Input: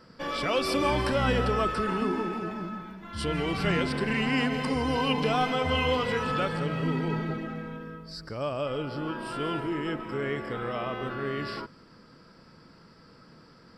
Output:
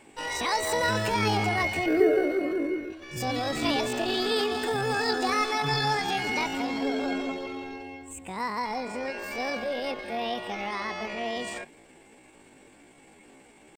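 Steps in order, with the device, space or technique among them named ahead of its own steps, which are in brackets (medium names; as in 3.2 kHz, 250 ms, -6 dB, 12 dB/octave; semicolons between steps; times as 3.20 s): 1.87–2.92 s: graphic EQ 125/250/500/1000/2000/4000/8000 Hz +5/+12/-8/+3/-8/-9/+8 dB; chipmunk voice (pitch shift +9 st)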